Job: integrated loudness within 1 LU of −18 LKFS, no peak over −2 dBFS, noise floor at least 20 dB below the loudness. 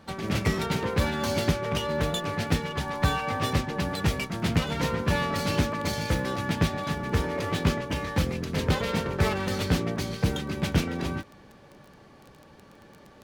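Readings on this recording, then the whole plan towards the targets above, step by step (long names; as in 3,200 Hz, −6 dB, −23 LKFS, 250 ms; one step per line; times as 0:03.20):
crackle rate 14 per second; integrated loudness −28.0 LKFS; sample peak −10.0 dBFS; target loudness −18.0 LKFS
→ click removal
level +10 dB
brickwall limiter −2 dBFS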